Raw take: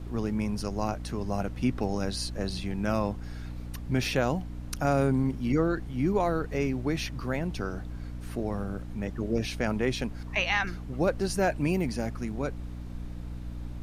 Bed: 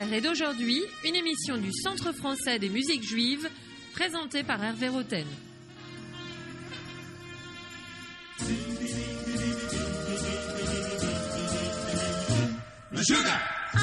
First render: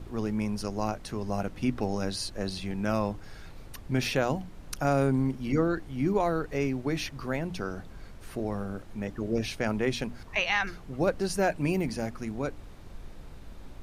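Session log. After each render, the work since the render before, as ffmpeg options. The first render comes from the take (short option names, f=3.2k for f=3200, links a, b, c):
-af "bandreject=f=60:t=h:w=6,bandreject=f=120:t=h:w=6,bandreject=f=180:t=h:w=6,bandreject=f=240:t=h:w=6,bandreject=f=300:t=h:w=6"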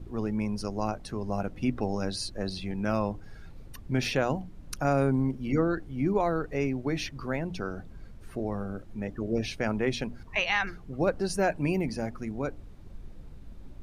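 -af "afftdn=nr=9:nf=-46"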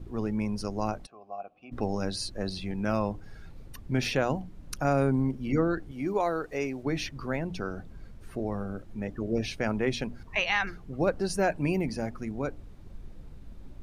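-filter_complex "[0:a]asplit=3[a][b][c];[a]afade=t=out:st=1.05:d=0.02[d];[b]asplit=3[e][f][g];[e]bandpass=f=730:t=q:w=8,volume=0dB[h];[f]bandpass=f=1.09k:t=q:w=8,volume=-6dB[i];[g]bandpass=f=2.44k:t=q:w=8,volume=-9dB[j];[h][i][j]amix=inputs=3:normalize=0,afade=t=in:st=1.05:d=0.02,afade=t=out:st=1.71:d=0.02[k];[c]afade=t=in:st=1.71:d=0.02[l];[d][k][l]amix=inputs=3:normalize=0,asettb=1/sr,asplit=3[m][n][o];[m]atrim=end=5.914[p];[n]atrim=start=5.91:end=6.83,asetpts=PTS-STARTPTS,afade=t=in:d=0.004:c=qsin,afade=t=out:st=0.916:d=0.004:c=qsin,bass=f=250:g=-10,treble=f=4k:g=5[q];[o]atrim=start=6.826[r];[p][q]acrossfade=d=0.004:c1=hsin:c2=qsin[s];[s][r]acrossfade=d=0.004:c1=qsin:c2=hsin"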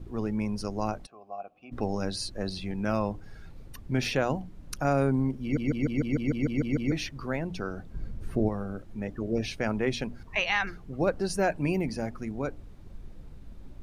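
-filter_complex "[0:a]asettb=1/sr,asplit=3[a][b][c];[a]atrim=end=7.944[d];[b]atrim=start=7.94:end=8.49,asetpts=PTS-STARTPTS,afade=t=in:d=0.004:c=qsin,afade=t=out:st=0.546:d=0.004:c=qsin,lowshelf=f=450:g=10[e];[c]atrim=start=8.486[f];[d][e]acrossfade=d=0.004:c1=hsin:c2=qsin[g];[g][f]acrossfade=d=0.004:c1=qsin:c2=hsin,asplit=11[h][i][j][k][l][m][n][o][p][q][r];[h]atrim=end=5.572[s];[i]atrim=start=5.418:end=5.572[t];[j]atrim=start=5.418:end=5.572[u];[k]atrim=start=5.418:end=5.572[v];[l]atrim=start=5.418:end=5.572[w];[m]atrim=start=5.418:end=5.572[x];[n]atrim=start=5.418:end=5.572[y];[o]atrim=start=5.418:end=5.572[z];[p]atrim=start=5.418:end=5.572[aa];[q]atrim=start=5.418:end=5.572[ab];[r]atrim=start=6.918[ac];[s][t]acrossfade=d=0.004:c1=hsin:c2=hsin[ad];[ad][u]acrossfade=d=0.004:c1=hsin:c2=hsin[ae];[ae][v]acrossfade=d=0.004:c1=hsin:c2=hsin[af];[af][w]acrossfade=d=0.004:c1=hsin:c2=hsin[ag];[ag][x]acrossfade=d=0.004:c1=hsin:c2=hsin[ah];[ah][y]acrossfade=d=0.004:c1=hsin:c2=hsin[ai];[ai][z]acrossfade=d=0.004:c1=hsin:c2=hsin[aj];[aj][aa]acrossfade=d=0.004:c1=hsin:c2=hsin[ak];[ak][ab]acrossfade=d=0.004:c1=hsin:c2=hsin[al];[al][ac]acrossfade=d=0.004:c1=hsin:c2=hsin"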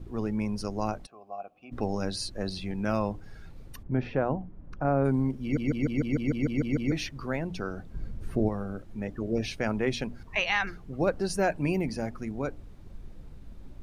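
-filter_complex "[0:a]asplit=3[a][b][c];[a]afade=t=out:st=3.82:d=0.02[d];[b]lowpass=1.3k,afade=t=in:st=3.82:d=0.02,afade=t=out:st=5.04:d=0.02[e];[c]afade=t=in:st=5.04:d=0.02[f];[d][e][f]amix=inputs=3:normalize=0"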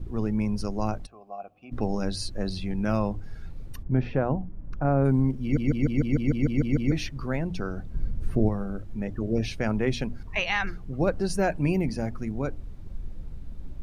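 -af "lowshelf=f=160:g=9.5,bandreject=f=50:t=h:w=6,bandreject=f=100:t=h:w=6"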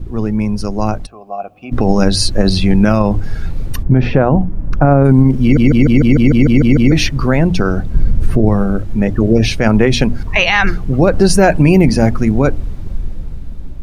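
-af "dynaudnorm=f=630:g=5:m=11.5dB,alimiter=level_in=10dB:limit=-1dB:release=50:level=0:latency=1"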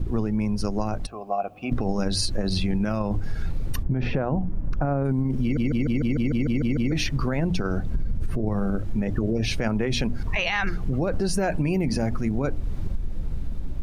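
-af "alimiter=limit=-6dB:level=0:latency=1:release=41,acompressor=threshold=-21dB:ratio=6"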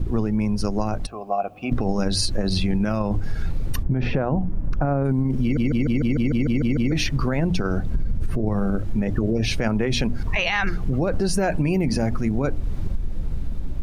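-af "volume=2.5dB"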